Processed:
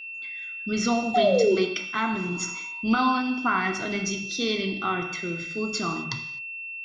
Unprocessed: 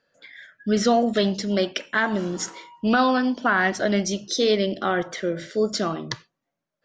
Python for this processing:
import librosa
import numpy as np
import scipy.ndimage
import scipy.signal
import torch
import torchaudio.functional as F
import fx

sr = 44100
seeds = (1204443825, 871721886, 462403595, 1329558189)

y = fx.hum_notches(x, sr, base_hz=50, count=5)
y = y + 0.83 * np.pad(y, (int(0.9 * sr / 1000.0), 0))[:len(y)]
y = fx.spec_paint(y, sr, seeds[0], shape='fall', start_s=1.14, length_s=0.42, low_hz=350.0, high_hz=760.0, level_db=-15.0)
y = y + 10.0 ** (-32.0 / 20.0) * np.sin(2.0 * np.pi * 2700.0 * np.arange(len(y)) / sr)
y = fx.rev_gated(y, sr, seeds[1], gate_ms=280, shape='falling', drr_db=5.0)
y = F.gain(torch.from_numpy(y), -6.0).numpy()